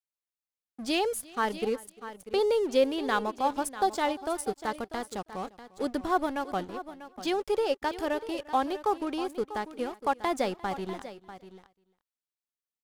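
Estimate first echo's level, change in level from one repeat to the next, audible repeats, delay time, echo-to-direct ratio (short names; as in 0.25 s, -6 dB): -22.5 dB, no steady repeat, 2, 0.349 s, -13.0 dB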